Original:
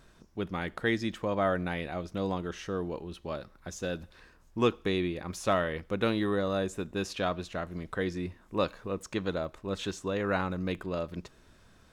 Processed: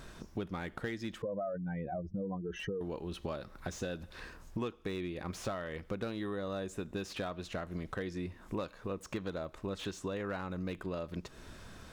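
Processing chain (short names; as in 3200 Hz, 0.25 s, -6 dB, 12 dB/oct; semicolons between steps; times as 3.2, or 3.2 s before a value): 1.22–2.81 spectral contrast raised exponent 2.7; compressor 8:1, threshold -44 dBFS, peak gain reduction 23 dB; slew limiter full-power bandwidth 12 Hz; gain +8.5 dB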